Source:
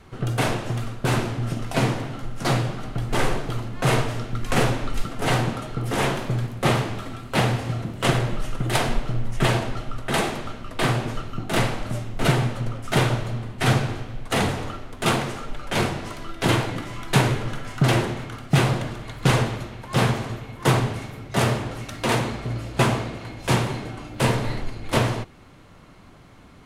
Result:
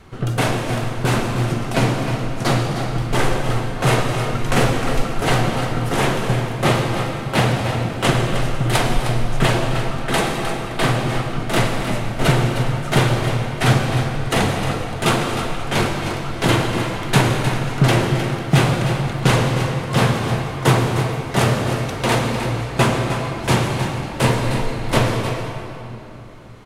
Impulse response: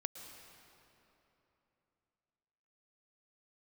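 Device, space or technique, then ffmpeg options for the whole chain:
cave: -filter_complex "[0:a]aecho=1:1:309:0.316[a];[1:a]atrim=start_sample=2205[b];[a][b]afir=irnorm=-1:irlink=0,volume=6dB"

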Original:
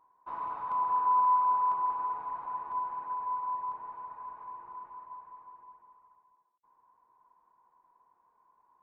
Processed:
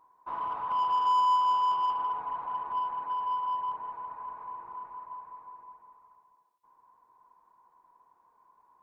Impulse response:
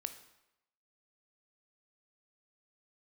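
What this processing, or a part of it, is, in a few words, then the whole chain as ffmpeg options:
saturated reverb return: -filter_complex "[0:a]asplit=2[a][b];[1:a]atrim=start_sample=2205[c];[b][c]afir=irnorm=-1:irlink=0,asoftclip=type=tanh:threshold=-33dB,volume=3dB[d];[a][d]amix=inputs=2:normalize=0,volume=-2.5dB"

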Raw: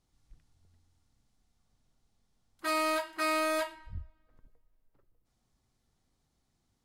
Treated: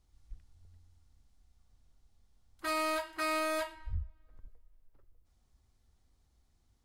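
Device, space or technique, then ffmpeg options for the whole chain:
car stereo with a boomy subwoofer: -af "lowshelf=f=100:t=q:w=1.5:g=8.5,alimiter=level_in=3dB:limit=-24dB:level=0:latency=1:release=272,volume=-3dB"

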